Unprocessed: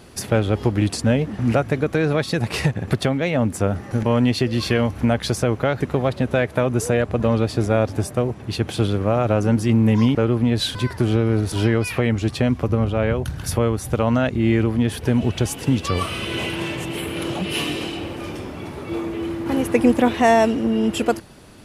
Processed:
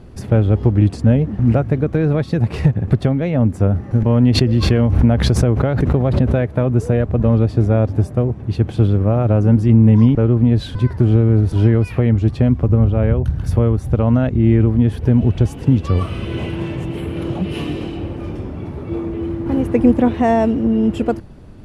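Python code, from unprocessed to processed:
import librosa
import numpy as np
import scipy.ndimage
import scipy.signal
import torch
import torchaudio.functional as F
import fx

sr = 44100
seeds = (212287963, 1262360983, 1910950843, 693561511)

y = fx.tilt_eq(x, sr, slope=-3.5)
y = fx.pre_swell(y, sr, db_per_s=38.0, at=(4.23, 6.41))
y = y * librosa.db_to_amplitude(-3.0)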